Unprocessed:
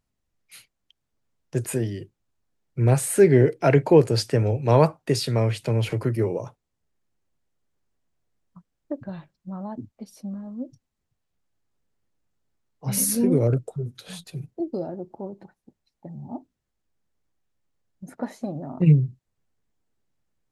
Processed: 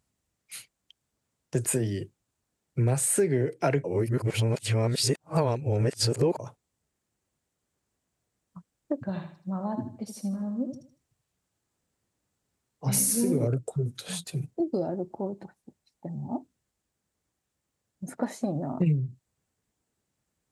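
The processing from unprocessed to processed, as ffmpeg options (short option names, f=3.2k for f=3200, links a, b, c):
-filter_complex "[0:a]asettb=1/sr,asplit=3[a][b][c];[a]atrim=end=9.054[d];[b]atrim=start=9.05:end=13.48,asetpts=PTS-STARTPTS,afade=t=in:d=0.004:c=qsin,afade=t=out:st=4.426:d=0.004:c=qsin,aecho=1:1:78|156|234|312:0.422|0.131|0.0405|0.0126,atrim=end_sample=195363[e];[c]atrim=start=13.476[f];[d][e]acrossfade=d=0.004:c1=hsin:c2=qsin[g];[g][f]acrossfade=d=0.004:c1=qsin:c2=hsin,asplit=3[h][i][j];[h]atrim=end=3.842[k];[i]atrim=start=3.838:end=6.392,asetpts=PTS-STARTPTS,areverse[l];[j]atrim=start=6.388[m];[k][l]acrossfade=d=0.004:c1=hsin:c2=hsin[n];[n][m]acrossfade=d=0.004:c1=hsin:c2=hsin,highpass=56,equalizer=f=8.1k:w=1.6:g=7,acompressor=threshold=-25dB:ratio=5,volume=2.5dB"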